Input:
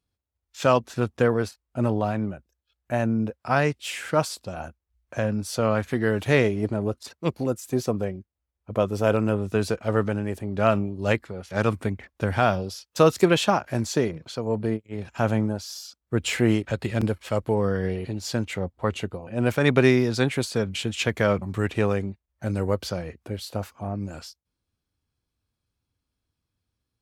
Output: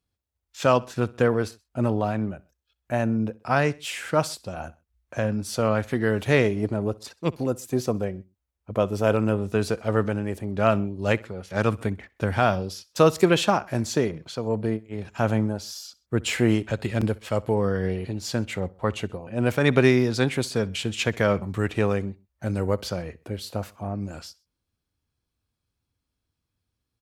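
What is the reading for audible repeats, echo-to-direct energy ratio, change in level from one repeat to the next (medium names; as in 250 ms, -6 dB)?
2, -22.0 dB, -5.5 dB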